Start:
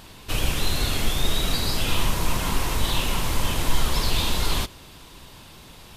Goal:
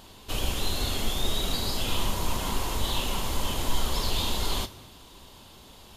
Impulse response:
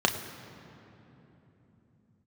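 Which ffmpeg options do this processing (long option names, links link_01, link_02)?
-filter_complex "[0:a]asplit=2[link_01][link_02];[1:a]atrim=start_sample=2205,afade=type=out:start_time=0.37:duration=0.01,atrim=end_sample=16758,highshelf=frequency=5800:gain=11.5[link_03];[link_02][link_03]afir=irnorm=-1:irlink=0,volume=-21dB[link_04];[link_01][link_04]amix=inputs=2:normalize=0,volume=-5.5dB"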